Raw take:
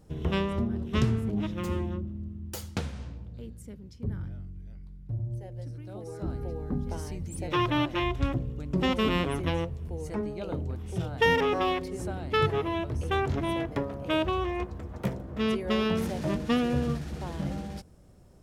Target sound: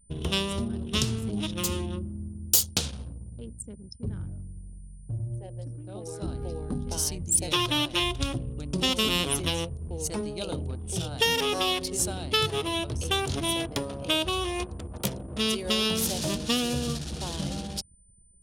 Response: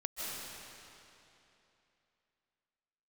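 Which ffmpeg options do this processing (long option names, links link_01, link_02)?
-filter_complex "[0:a]asplit=2[link_01][link_02];[1:a]atrim=start_sample=2205,atrim=end_sample=3528,lowshelf=frequency=240:gain=-8.5[link_03];[link_02][link_03]afir=irnorm=-1:irlink=0,volume=-8.5dB[link_04];[link_01][link_04]amix=inputs=2:normalize=0,aeval=exprs='val(0)+0.00126*sin(2*PI*9000*n/s)':channel_layout=same,anlmdn=0.1,acompressor=threshold=-28dB:ratio=2,aexciter=amount=5.1:drive=7.4:freq=2900"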